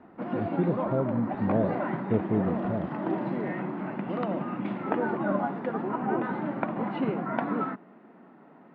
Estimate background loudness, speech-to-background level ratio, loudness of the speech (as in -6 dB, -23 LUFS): -31.0 LUFS, 0.5 dB, -30.5 LUFS